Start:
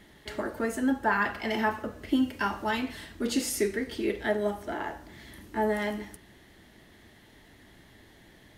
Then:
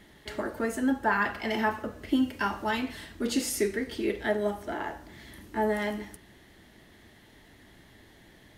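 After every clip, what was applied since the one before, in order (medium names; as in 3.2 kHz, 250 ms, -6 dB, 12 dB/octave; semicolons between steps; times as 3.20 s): no audible change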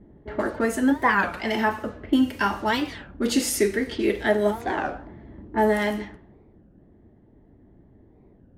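level-controlled noise filter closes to 370 Hz, open at -27.5 dBFS; gain riding within 4 dB 2 s; warped record 33 1/3 rpm, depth 250 cents; trim +5.5 dB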